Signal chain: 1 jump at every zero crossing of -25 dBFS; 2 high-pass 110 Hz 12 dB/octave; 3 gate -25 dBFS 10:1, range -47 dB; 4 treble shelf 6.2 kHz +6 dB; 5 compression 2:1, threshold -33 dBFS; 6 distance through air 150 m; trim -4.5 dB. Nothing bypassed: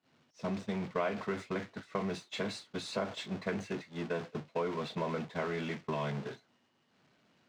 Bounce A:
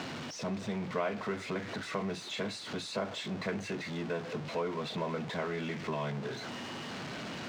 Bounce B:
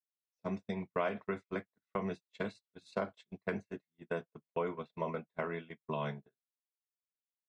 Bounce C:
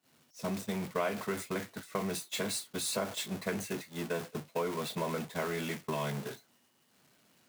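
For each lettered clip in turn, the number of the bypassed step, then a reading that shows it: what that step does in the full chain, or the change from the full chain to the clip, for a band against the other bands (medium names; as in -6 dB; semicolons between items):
3, 8 kHz band +4.0 dB; 1, distortion -8 dB; 6, 8 kHz band +13.5 dB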